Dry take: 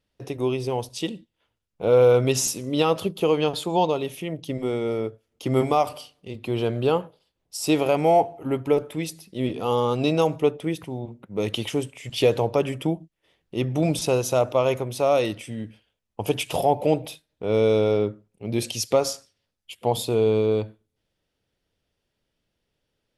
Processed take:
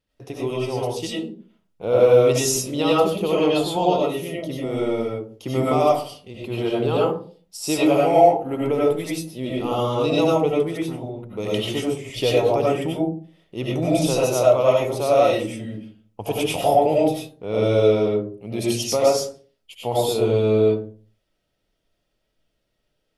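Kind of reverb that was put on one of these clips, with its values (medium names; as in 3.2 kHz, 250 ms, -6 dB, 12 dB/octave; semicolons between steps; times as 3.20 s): algorithmic reverb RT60 0.42 s, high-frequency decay 0.35×, pre-delay 55 ms, DRR -5.5 dB; trim -3.5 dB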